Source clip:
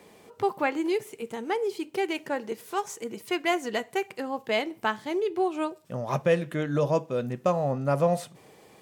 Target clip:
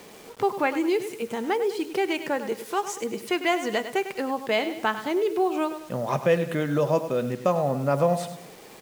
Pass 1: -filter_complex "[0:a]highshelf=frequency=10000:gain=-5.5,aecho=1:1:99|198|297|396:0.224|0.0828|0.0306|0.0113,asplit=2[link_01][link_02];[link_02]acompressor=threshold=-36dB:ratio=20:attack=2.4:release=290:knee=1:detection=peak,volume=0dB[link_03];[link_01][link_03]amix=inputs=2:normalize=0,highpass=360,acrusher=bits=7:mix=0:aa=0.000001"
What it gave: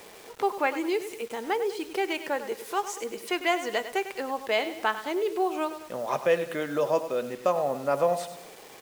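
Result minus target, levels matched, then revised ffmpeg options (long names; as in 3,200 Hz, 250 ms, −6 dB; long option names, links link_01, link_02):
125 Hz band −11.5 dB; downward compressor: peak gain reduction +6 dB
-filter_complex "[0:a]highshelf=frequency=10000:gain=-5.5,aecho=1:1:99|198|297|396:0.224|0.0828|0.0306|0.0113,asplit=2[link_01][link_02];[link_02]acompressor=threshold=-29.5dB:ratio=20:attack=2.4:release=290:knee=1:detection=peak,volume=0dB[link_03];[link_01][link_03]amix=inputs=2:normalize=0,highpass=130,acrusher=bits=7:mix=0:aa=0.000001"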